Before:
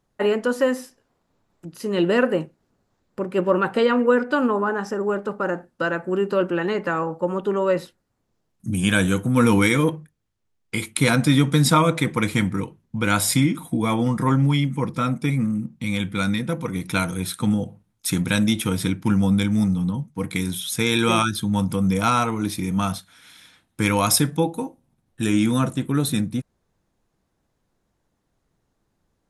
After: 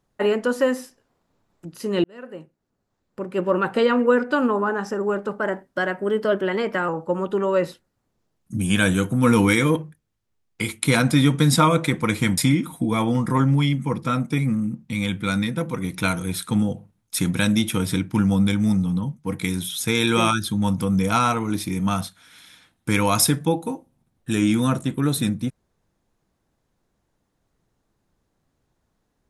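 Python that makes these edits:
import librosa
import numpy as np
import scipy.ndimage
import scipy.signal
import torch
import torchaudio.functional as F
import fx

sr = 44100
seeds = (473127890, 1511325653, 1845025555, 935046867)

y = fx.edit(x, sr, fx.fade_in_span(start_s=2.04, length_s=1.76),
    fx.speed_span(start_s=5.39, length_s=1.63, speed=1.09),
    fx.cut(start_s=12.51, length_s=0.78), tone=tone)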